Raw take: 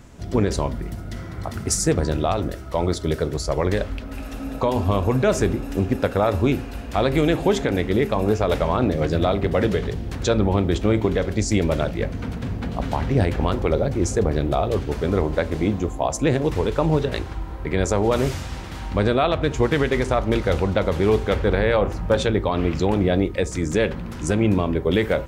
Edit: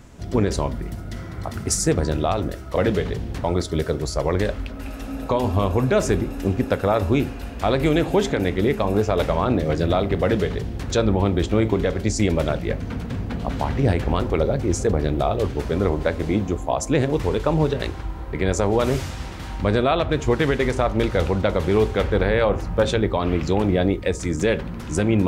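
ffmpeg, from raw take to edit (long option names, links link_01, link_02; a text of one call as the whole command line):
ffmpeg -i in.wav -filter_complex "[0:a]asplit=3[link_01][link_02][link_03];[link_01]atrim=end=2.762[link_04];[link_02]atrim=start=9.528:end=10.212[link_05];[link_03]atrim=start=2.758[link_06];[link_04][link_05]acrossfade=duration=0.004:curve1=hsin:curve2=hsin[link_07];[link_07][link_06]acrossfade=duration=0.004:curve1=hsin:curve2=hsin" out.wav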